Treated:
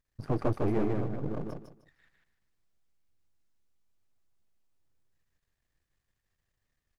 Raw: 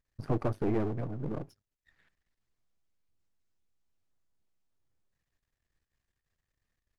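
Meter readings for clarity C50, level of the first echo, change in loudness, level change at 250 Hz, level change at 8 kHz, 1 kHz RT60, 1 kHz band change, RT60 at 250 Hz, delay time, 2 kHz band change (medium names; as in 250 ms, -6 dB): no reverb, -3.0 dB, +1.5 dB, +1.5 dB, no reading, no reverb, +2.0 dB, no reverb, 153 ms, +2.0 dB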